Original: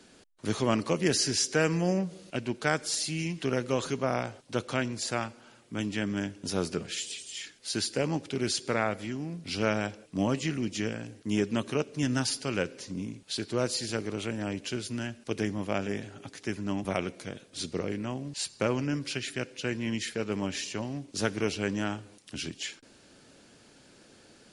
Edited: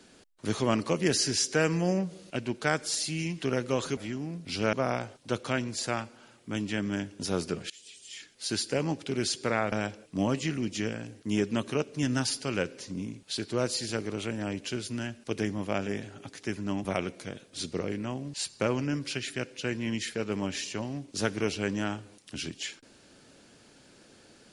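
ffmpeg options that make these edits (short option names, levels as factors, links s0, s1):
-filter_complex "[0:a]asplit=5[s0][s1][s2][s3][s4];[s0]atrim=end=3.972[s5];[s1]atrim=start=8.958:end=9.722[s6];[s2]atrim=start=3.968:end=6.94,asetpts=PTS-STARTPTS,afade=t=out:st=2.968:d=0.004:c=hsin:silence=0.0668344[s7];[s3]atrim=start=6.94:end=8.962,asetpts=PTS-STARTPTS,afade=t=in:d=0.79:silence=0.0668344[s8];[s4]atrim=start=9.718[s9];[s5][s6]acrossfade=d=0.004:c1=hsin:c2=hsin[s10];[s7][s8]concat=n=2:v=0:a=1[s11];[s10][s11]acrossfade=d=0.004:c1=hsin:c2=hsin[s12];[s12][s9]acrossfade=d=0.004:c1=hsin:c2=hsin"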